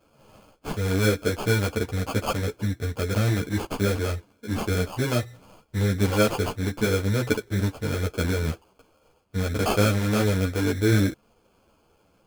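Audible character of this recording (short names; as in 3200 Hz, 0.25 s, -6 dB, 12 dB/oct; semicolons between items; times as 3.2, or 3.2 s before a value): aliases and images of a low sample rate 1900 Hz, jitter 0%; a shimmering, thickened sound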